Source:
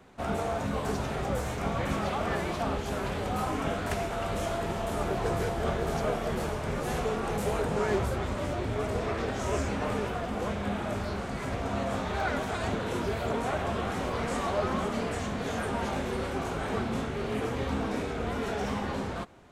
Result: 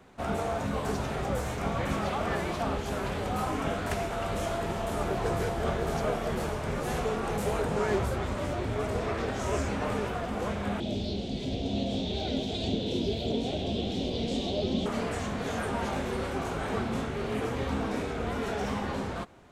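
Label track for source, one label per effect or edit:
10.800000	14.860000	drawn EQ curve 130 Hz 0 dB, 270 Hz +5 dB, 420 Hz +1 dB, 720 Hz −5 dB, 1,200 Hz −25 dB, 1,800 Hz −17 dB, 3,500 Hz +11 dB, 9,900 Hz −12 dB

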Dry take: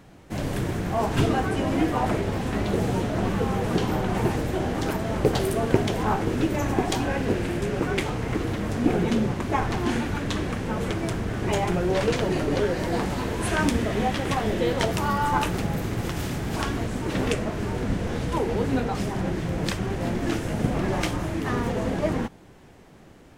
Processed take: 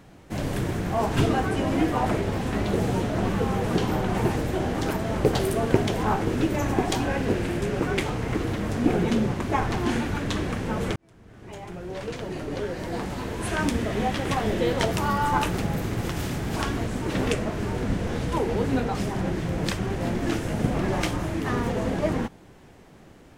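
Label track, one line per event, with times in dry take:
10.960000	14.460000	fade in

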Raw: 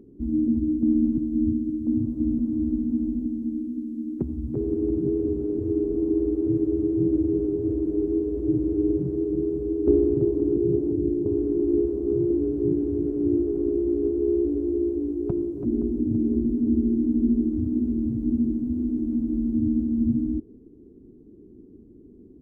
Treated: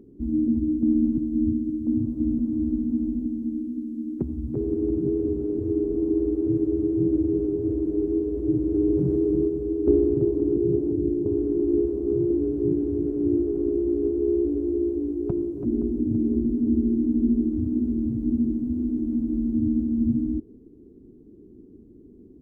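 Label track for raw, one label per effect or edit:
8.740000	9.480000	envelope flattener amount 70%

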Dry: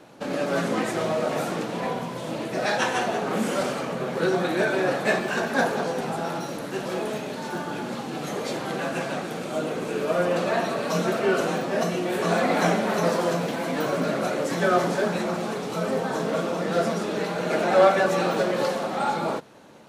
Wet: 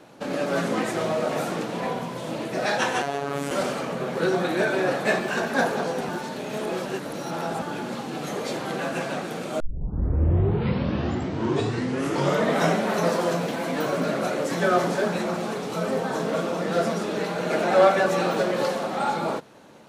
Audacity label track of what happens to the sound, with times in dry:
3.020000	3.510000	phases set to zero 141 Hz
6.090000	7.620000	reverse
9.600000	9.600000	tape start 3.22 s

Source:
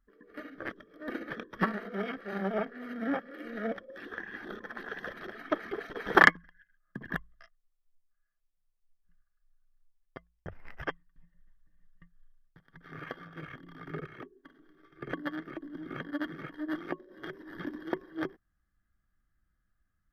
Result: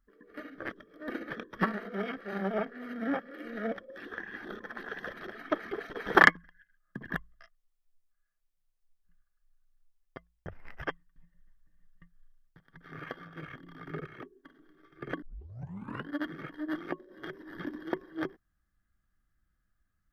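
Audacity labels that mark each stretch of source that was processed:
15.220000	15.220000	tape start 0.87 s

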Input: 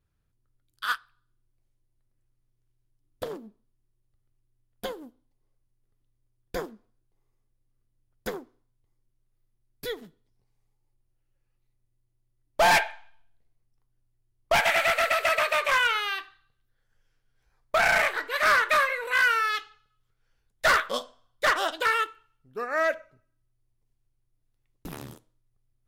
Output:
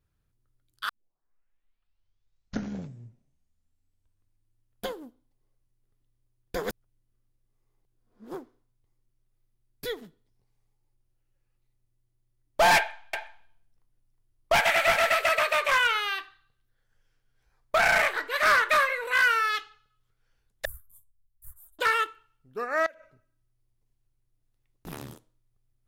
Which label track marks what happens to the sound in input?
0.890000	0.890000	tape start 3.98 s
6.630000	8.340000	reverse
12.770000	15.210000	single-tap delay 362 ms −7 dB
20.650000	21.790000	inverse Chebyshev band-stop filter 230–5,400 Hz, stop band 50 dB
22.860000	24.870000	downward compressor 12 to 1, threshold −44 dBFS

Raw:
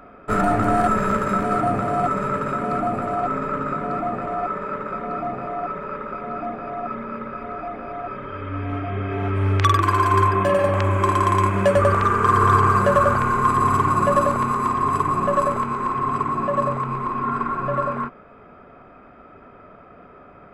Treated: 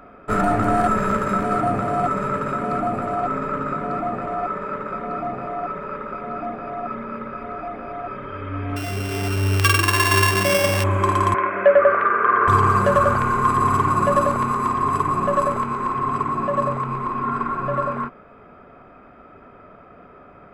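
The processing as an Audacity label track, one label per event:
8.760000	10.840000	samples sorted by size in blocks of 16 samples
11.340000	12.480000	loudspeaker in its box 400–2,400 Hz, peaks and dips at 580 Hz +6 dB, 900 Hz −6 dB, 1,500 Hz +6 dB, 2,100 Hz +4 dB

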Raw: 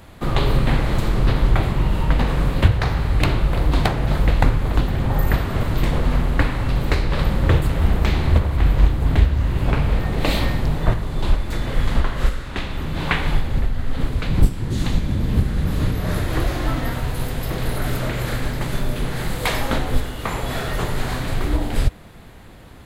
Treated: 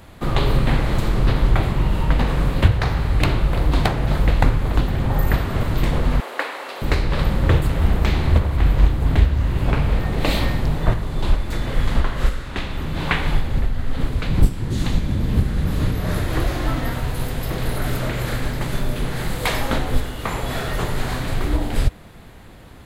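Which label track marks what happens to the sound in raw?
6.200000	6.820000	high-pass filter 430 Hz 24 dB per octave

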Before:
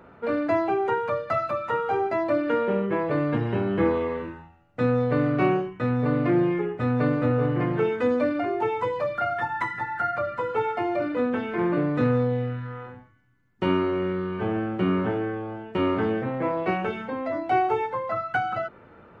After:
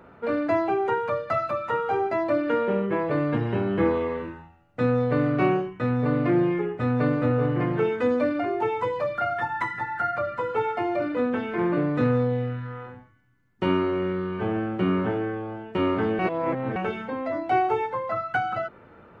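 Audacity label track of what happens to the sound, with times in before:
16.190000	16.760000	reverse

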